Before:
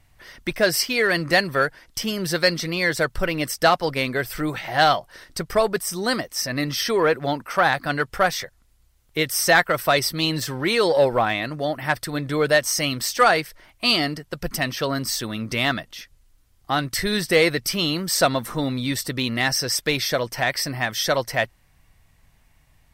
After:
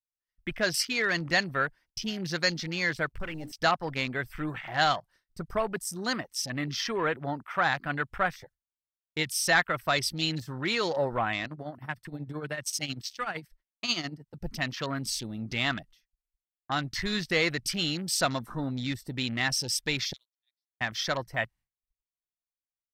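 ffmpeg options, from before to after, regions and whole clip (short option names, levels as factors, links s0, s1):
-filter_complex "[0:a]asettb=1/sr,asplit=3[s0][s1][s2];[s0]atrim=end=3.064[s3];[s1]atrim=start=3.06:end=3.52,asetpts=PTS-STARTPTS,afade=t=in:d=0.004:c=qsin,afade=t=out:st=0.456:d=0.004:c=qsin,bandreject=f=60:t=h:w=6,bandreject=f=120:t=h:w=6,bandreject=f=180:t=h:w=6,bandreject=f=240:t=h:w=6,bandreject=f=300:t=h:w=6,bandreject=f=360:t=h:w=6,acrusher=bits=6:mix=0:aa=0.5,aeval=exprs='(tanh(12.6*val(0)+0.35)-tanh(0.35))/12.6':c=same[s4];[s2]atrim=start=3.516[s5];[s3][s4]acrossfade=d=0.004:c1=hsin:c2=qsin[s6];[s6][s5]acrossfade=d=0.004:c1=qsin:c2=hsin,asettb=1/sr,asplit=3[s7][s8][s9];[s7]atrim=end=11.454[s10];[s8]atrim=start=11.45:end=14.34,asetpts=PTS-STARTPTS,afade=t=in:d=0.004:c=qsin,afade=t=out:st=2.886:d=0.004:c=qsin,tremolo=f=13:d=0.7,acrossover=split=220|3000[s11][s12][s13];[s12]acompressor=threshold=0.0631:ratio=3:attack=3.2:release=140:knee=2.83:detection=peak[s14];[s11][s14][s13]amix=inputs=3:normalize=0[s15];[s9]atrim=start=14.336[s16];[s10][s15]acrossfade=d=0.004:c1=hsin:c2=qsin[s17];[s17][s16]acrossfade=d=0.004:c1=qsin:c2=hsin,asettb=1/sr,asplit=3[s18][s19][s20];[s18]atrim=end=20.134[s21];[s19]atrim=start=20.13:end=20.81,asetpts=PTS-STARTPTS,afade=t=in:d=0.004:c=qsin,afade=t=out:st=0.676:d=0.004:c=qsin,bandpass=f=3700:t=q:w=11,aeval=exprs='sgn(val(0))*max(abs(val(0))-0.00211,0)':c=same[s22];[s20]atrim=start=20.806[s23];[s21][s22]acrossfade=d=0.004:c1=hsin:c2=qsin[s24];[s24][s23]acrossfade=d=0.004:c1=qsin:c2=hsin,afwtdn=0.0251,agate=range=0.0224:threshold=0.00794:ratio=3:detection=peak,equalizer=f=490:w=1.2:g=-6.5,volume=0.531"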